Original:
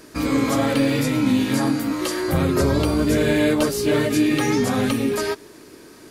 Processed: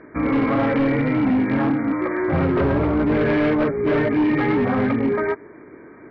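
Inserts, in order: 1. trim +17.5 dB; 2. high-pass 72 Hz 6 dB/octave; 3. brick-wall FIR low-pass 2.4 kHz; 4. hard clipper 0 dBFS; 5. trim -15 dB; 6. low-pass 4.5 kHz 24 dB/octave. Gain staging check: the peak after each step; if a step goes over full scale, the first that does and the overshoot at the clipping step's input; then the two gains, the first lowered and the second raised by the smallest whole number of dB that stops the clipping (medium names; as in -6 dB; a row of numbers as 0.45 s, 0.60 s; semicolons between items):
+8.5 dBFS, +9.5 dBFS, +9.0 dBFS, 0.0 dBFS, -15.0 dBFS, -14.5 dBFS; step 1, 9.0 dB; step 1 +8.5 dB, step 5 -6 dB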